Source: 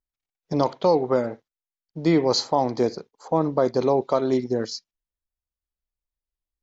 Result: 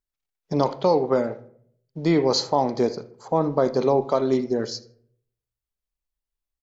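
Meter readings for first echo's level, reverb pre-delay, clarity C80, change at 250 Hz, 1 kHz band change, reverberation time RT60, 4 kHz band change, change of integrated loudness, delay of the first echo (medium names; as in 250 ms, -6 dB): -22.5 dB, 5 ms, 20.0 dB, 0.0 dB, +0.5 dB, 0.60 s, 0.0 dB, +0.5 dB, 79 ms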